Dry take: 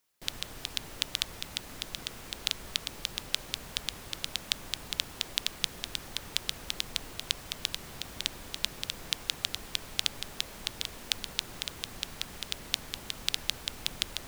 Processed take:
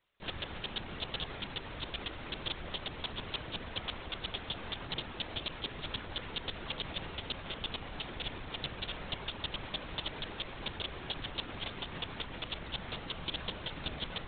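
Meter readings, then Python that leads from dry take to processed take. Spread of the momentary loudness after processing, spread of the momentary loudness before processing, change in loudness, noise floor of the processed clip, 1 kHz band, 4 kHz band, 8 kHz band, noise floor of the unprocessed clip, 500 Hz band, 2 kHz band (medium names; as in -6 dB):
3 LU, 6 LU, -5.0 dB, -46 dBFS, +3.0 dB, -5.5 dB, under -40 dB, -47 dBFS, +4.0 dB, -2.0 dB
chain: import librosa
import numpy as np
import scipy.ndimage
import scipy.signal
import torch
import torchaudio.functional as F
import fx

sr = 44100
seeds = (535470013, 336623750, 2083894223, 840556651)

y = fx.tube_stage(x, sr, drive_db=21.0, bias=0.4)
y = fx.lpc_vocoder(y, sr, seeds[0], excitation='whisper', order=16)
y = F.gain(torch.from_numpy(y), 4.5).numpy()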